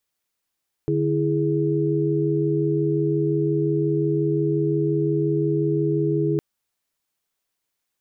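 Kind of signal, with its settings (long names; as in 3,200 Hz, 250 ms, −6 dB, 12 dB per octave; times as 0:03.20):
held notes D3/E4/G#4 sine, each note −23 dBFS 5.51 s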